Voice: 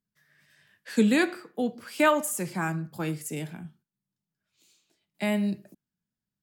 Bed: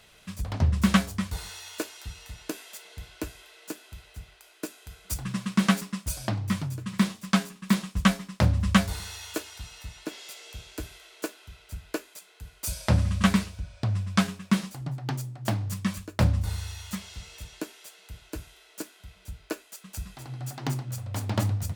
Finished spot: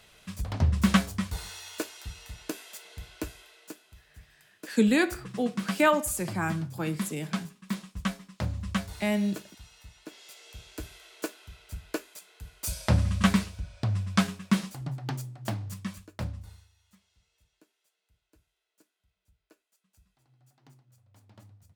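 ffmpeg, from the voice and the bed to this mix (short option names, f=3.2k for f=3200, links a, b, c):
-filter_complex "[0:a]adelay=3800,volume=-0.5dB[a];[1:a]volume=7.5dB,afade=t=out:st=3.31:d=0.54:silence=0.375837,afade=t=in:st=10.04:d=1.08:silence=0.375837,afade=t=out:st=14.79:d=1.9:silence=0.0446684[b];[a][b]amix=inputs=2:normalize=0"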